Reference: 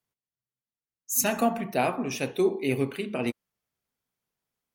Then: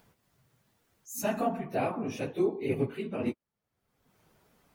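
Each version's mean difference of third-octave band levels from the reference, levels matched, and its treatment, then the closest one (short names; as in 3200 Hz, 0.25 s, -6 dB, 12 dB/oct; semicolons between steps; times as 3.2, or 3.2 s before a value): 4.5 dB: phase scrambler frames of 50 ms; in parallel at -1.5 dB: upward compressor, threshold -25 dBFS; on the sum: high shelf 2100 Hz -11.5 dB; gain -8 dB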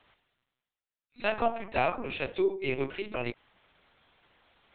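7.5 dB: LPC vocoder at 8 kHz pitch kept; low shelf 310 Hz -11 dB; reverse; upward compressor, threshold -45 dBFS; reverse; gain +1 dB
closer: first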